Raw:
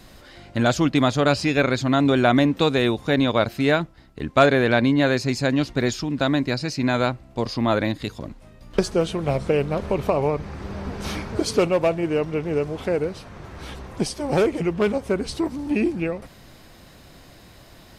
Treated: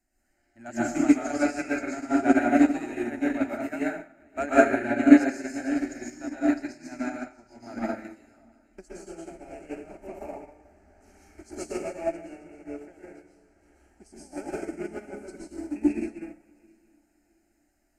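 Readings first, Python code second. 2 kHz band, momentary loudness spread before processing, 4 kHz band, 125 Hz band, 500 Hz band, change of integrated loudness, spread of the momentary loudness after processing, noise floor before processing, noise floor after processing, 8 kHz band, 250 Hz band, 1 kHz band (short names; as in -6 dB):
-6.5 dB, 13 LU, under -20 dB, -22.5 dB, -9.5 dB, -3.5 dB, 21 LU, -48 dBFS, -70 dBFS, -7.0 dB, -2.5 dB, -7.0 dB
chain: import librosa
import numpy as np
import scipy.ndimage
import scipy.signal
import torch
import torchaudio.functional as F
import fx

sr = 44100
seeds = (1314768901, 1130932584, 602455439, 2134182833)

y = fx.reverse_delay_fb(x, sr, ms=332, feedback_pct=56, wet_db=-12.5)
y = fx.peak_eq(y, sr, hz=7400.0, db=9.5, octaves=0.49)
y = fx.fixed_phaser(y, sr, hz=720.0, stages=8)
y = fx.rev_plate(y, sr, seeds[0], rt60_s=1.0, hf_ratio=0.85, predelay_ms=105, drr_db=-5.5)
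y = fx.upward_expand(y, sr, threshold_db=-25.0, expansion=2.5)
y = y * 10.0 ** (-1.0 / 20.0)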